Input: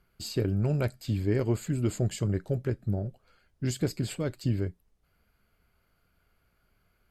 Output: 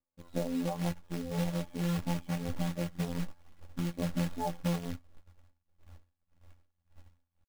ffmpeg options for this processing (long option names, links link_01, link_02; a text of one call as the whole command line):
ffmpeg -i in.wav -af "afftfilt=real='re*pow(10,14/40*sin(2*PI*(2*log(max(b,1)*sr/1024/100)/log(2)-(-1.9)*(pts-256)/sr)))':imag='im*pow(10,14/40*sin(2*PI*(2*log(max(b,1)*sr/1024/100)/log(2)-(-1.9)*(pts-256)/sr)))':win_size=1024:overlap=0.75,asetrate=64194,aresample=44100,atempo=0.686977,agate=range=-33dB:threshold=-58dB:ratio=3:detection=peak,asetrate=41895,aresample=44100,asubboost=boost=12:cutoff=130,aresample=8000,asoftclip=type=tanh:threshold=-16.5dB,aresample=44100,afftfilt=real='hypot(re,im)*cos(PI*b)':imag='0':win_size=2048:overlap=0.75,highshelf=frequency=1600:width_type=q:width=1.5:gain=-13.5,acrusher=bits=3:mode=log:mix=0:aa=0.000001,acompressor=threshold=-29dB:ratio=2.5,aecho=1:1:3.6:0.44" out.wav